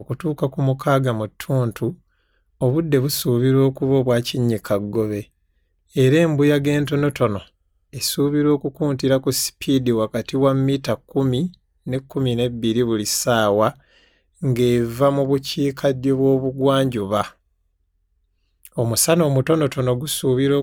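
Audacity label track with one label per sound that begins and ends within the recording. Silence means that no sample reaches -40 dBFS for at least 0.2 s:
2.610000	5.240000	sound
5.950000	7.480000	sound
7.930000	11.540000	sound
11.860000	13.740000	sound
14.420000	17.320000	sound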